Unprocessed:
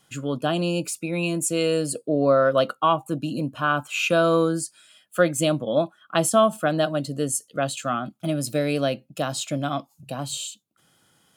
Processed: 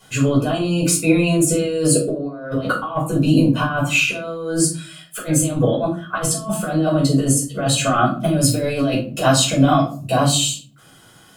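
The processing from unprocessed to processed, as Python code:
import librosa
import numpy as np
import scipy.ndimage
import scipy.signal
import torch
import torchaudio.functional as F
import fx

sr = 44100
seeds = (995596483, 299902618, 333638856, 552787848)

y = fx.over_compress(x, sr, threshold_db=-27.0, ratio=-0.5)
y = fx.room_shoebox(y, sr, seeds[0], volume_m3=240.0, walls='furnished', distance_m=5.1)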